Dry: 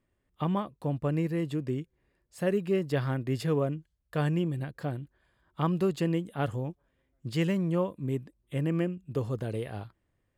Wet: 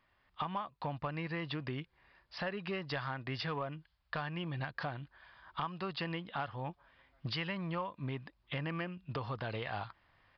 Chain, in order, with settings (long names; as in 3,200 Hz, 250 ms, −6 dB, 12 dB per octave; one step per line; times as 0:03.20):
camcorder AGC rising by 7.4 dB per second
low shelf with overshoot 610 Hz −12 dB, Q 1.5
downward compressor 5 to 1, threshold −44 dBFS, peak gain reduction 17.5 dB
soft clipping −35.5 dBFS, distortion −21 dB
downsampling to 11,025 Hz
level +9.5 dB